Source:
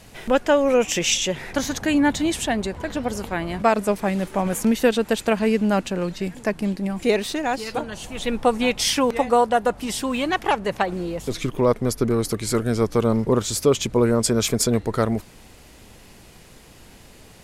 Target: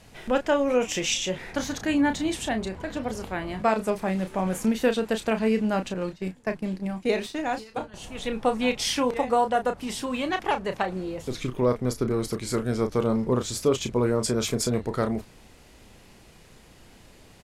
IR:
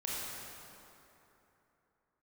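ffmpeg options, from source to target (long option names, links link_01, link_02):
-filter_complex "[0:a]asettb=1/sr,asplit=3[link_01][link_02][link_03];[link_01]atrim=end=5.944[link_04];[link_02]atrim=start=5.94:end=7.94,asetpts=PTS-STARTPTS,afade=type=in:duration=0.004:curve=qsin,afade=type=out:start_time=1.996:duration=0.004:curve=qsin,agate=range=-13dB:threshold=-27dB:ratio=16:detection=peak[link_05];[link_03]atrim=start=7.936[link_06];[link_04][link_05]acrossfade=duration=0.004:curve1=hsin:curve2=qsin[link_07];[link_07][link_06]acrossfade=duration=0.004:curve1=qsin:curve2=hsin,highshelf=frequency=9800:gain=-7,asplit=2[link_08][link_09];[link_09]adelay=32,volume=-8.5dB[link_10];[link_08][link_10]amix=inputs=2:normalize=0,volume=-5dB"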